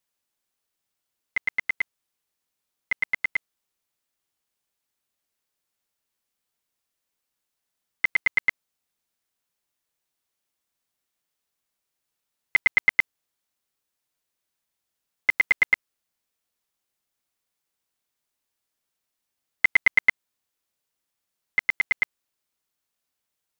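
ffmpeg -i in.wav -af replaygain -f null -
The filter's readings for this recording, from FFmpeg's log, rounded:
track_gain = +6.1 dB
track_peak = 0.270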